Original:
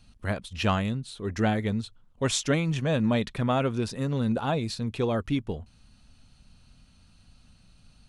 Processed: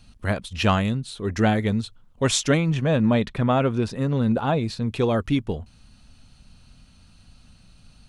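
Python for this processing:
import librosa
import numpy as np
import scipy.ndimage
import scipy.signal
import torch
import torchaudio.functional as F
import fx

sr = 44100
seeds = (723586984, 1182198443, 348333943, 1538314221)

y = fx.high_shelf(x, sr, hz=4000.0, db=-9.5, at=(2.57, 4.89))
y = y * librosa.db_to_amplitude(5.0)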